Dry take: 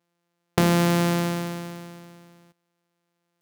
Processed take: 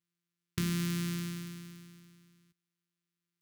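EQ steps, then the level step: amplifier tone stack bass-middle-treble 6-0-2; high-order bell 670 Hz -15 dB 1 oct; +5.5 dB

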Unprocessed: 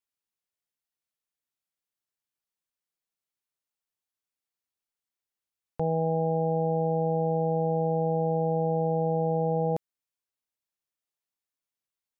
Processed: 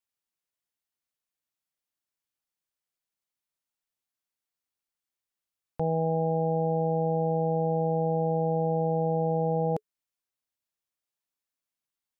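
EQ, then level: band-stop 430 Hz, Q 12; 0.0 dB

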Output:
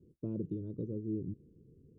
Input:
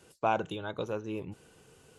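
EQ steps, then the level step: inverse Chebyshev low-pass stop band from 700 Hz, stop band 40 dB; +3.0 dB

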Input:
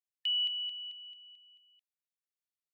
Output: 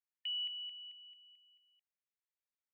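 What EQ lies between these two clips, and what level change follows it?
low-pass 2.6 kHz 24 dB/octave; distance through air 400 m; differentiator; +13.0 dB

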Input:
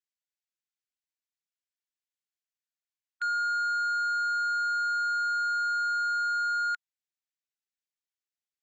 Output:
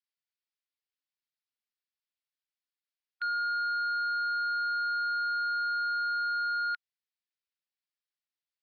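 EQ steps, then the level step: high-pass 1.3 kHz; steep low-pass 5.4 kHz 72 dB/octave; 0.0 dB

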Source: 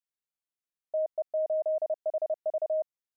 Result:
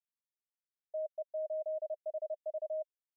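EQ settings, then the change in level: resonant low-pass 600 Hz, resonance Q 6.6; differentiator; tilt EQ +6 dB/octave; +2.0 dB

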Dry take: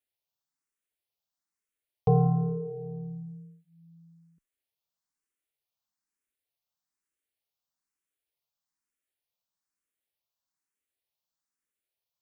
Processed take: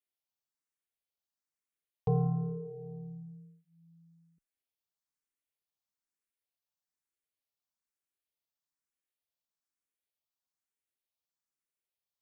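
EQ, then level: dynamic bell 670 Hz, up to -5 dB, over -45 dBFS, Q 2.3; -6.0 dB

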